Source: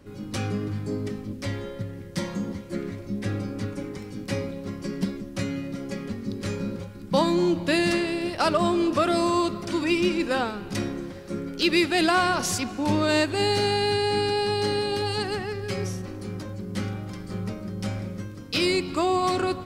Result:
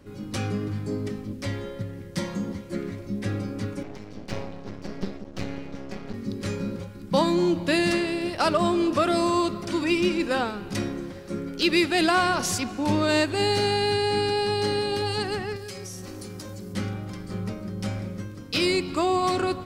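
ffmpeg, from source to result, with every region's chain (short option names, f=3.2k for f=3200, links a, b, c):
-filter_complex "[0:a]asettb=1/sr,asplit=3[a][b][c];[a]atrim=end=3.834[d];[b]atrim=start=3.83:end=6.14,asetpts=PTS-STARTPTS,afade=t=in:d=0.004:c=qsin,afade=t=out:st=2.306:d=0.004:c=qsin,lowpass=f=6.3k:w=0.5412,lowpass=f=6.3k:w=1.3066,aeval=exprs='max(val(0),0)':c=same[e];[c]atrim=start=6.136[f];[d][e]acrossfade=d=0.004:c1=hsin:c2=qsin[g];[g][f]acrossfade=d=0.004:c1=qsin:c2=hsin,asettb=1/sr,asplit=3[h][i][j];[h]atrim=end=15.564[k];[i]atrim=start=15.56:end=16.74,asetpts=PTS-STARTPTS,afade=t=in:d=0.004:c=qsin,afade=t=out:st=1.176:d=0.004:c=qsin,bass=f=250:g=-3,treble=f=4k:g=11,acompressor=threshold=-33dB:ratio=10:attack=3.2:release=140:knee=1:detection=peak[l];[j]atrim=start=16.736[m];[k][l]acrossfade=d=0.004:c1=hsin:c2=qsin[n];[n][m]acrossfade=d=0.004:c1=qsin:c2=hsin"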